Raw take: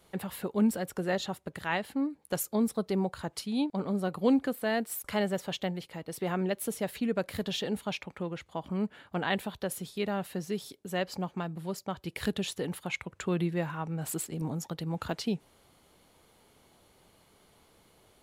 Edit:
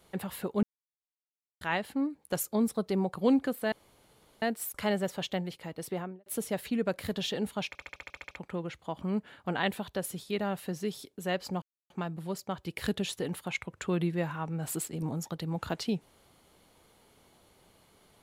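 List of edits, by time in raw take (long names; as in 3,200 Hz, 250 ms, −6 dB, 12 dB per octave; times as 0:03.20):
0:00.63–0:01.61: silence
0:03.15–0:04.15: remove
0:04.72: splice in room tone 0.70 s
0:06.12–0:06.56: fade out and dull
0:07.98: stutter 0.07 s, 10 plays
0:11.29: splice in silence 0.28 s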